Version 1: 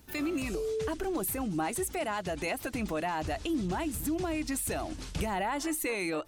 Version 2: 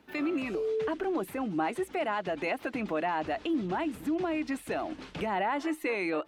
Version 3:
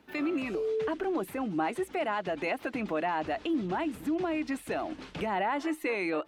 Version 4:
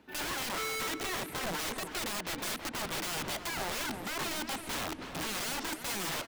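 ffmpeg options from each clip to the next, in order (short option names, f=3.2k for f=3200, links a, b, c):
-filter_complex "[0:a]acrossover=split=180 3500:gain=0.112 1 0.1[a][b][c];[a][b][c]amix=inputs=3:normalize=0,volume=2.5dB"
-af anull
-filter_complex "[0:a]aeval=exprs='(mod(35.5*val(0)+1,2)-1)/35.5':c=same,asplit=2[a][b];[b]adelay=324,lowpass=f=1.8k:p=1,volume=-7dB,asplit=2[c][d];[d]adelay=324,lowpass=f=1.8k:p=1,volume=0.41,asplit=2[e][f];[f]adelay=324,lowpass=f=1.8k:p=1,volume=0.41,asplit=2[g][h];[h]adelay=324,lowpass=f=1.8k:p=1,volume=0.41,asplit=2[i][j];[j]adelay=324,lowpass=f=1.8k:p=1,volume=0.41[k];[a][c][e][g][i][k]amix=inputs=6:normalize=0"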